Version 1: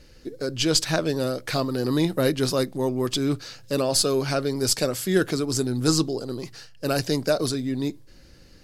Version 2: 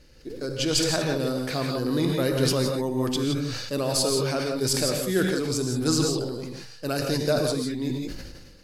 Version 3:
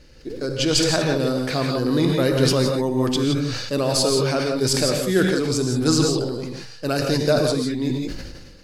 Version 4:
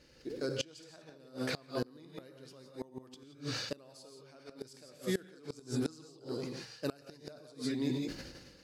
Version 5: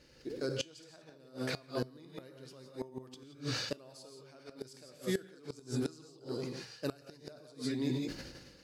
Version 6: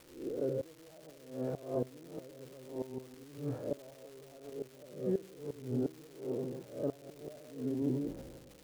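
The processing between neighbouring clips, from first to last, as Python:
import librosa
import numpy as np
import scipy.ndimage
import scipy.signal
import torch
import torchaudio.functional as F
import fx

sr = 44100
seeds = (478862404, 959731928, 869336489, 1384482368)

y1 = fx.rev_gated(x, sr, seeds[0], gate_ms=190, shape='rising', drr_db=2.5)
y1 = fx.sustainer(y1, sr, db_per_s=38.0)
y1 = y1 * 10.0 ** (-4.0 / 20.0)
y2 = fx.peak_eq(y1, sr, hz=13000.0, db=-7.0, octaves=0.89)
y2 = y2 * 10.0 ** (5.0 / 20.0)
y3 = fx.highpass(y2, sr, hz=160.0, slope=6)
y3 = fx.gate_flip(y3, sr, shuts_db=-13.0, range_db=-26)
y3 = y3 * 10.0 ** (-8.5 / 20.0)
y4 = fx.rider(y3, sr, range_db=4, speed_s=2.0)
y4 = fx.comb_fb(y4, sr, f0_hz=130.0, decay_s=0.34, harmonics='odd', damping=0.0, mix_pct=40)
y4 = y4 * 10.0 ** (2.5 / 20.0)
y5 = fx.spec_swells(y4, sr, rise_s=0.46)
y5 = fx.ladder_lowpass(y5, sr, hz=840.0, resonance_pct=30)
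y5 = fx.dmg_crackle(y5, sr, seeds[1], per_s=540.0, level_db=-52.0)
y5 = y5 * 10.0 ** (5.5 / 20.0)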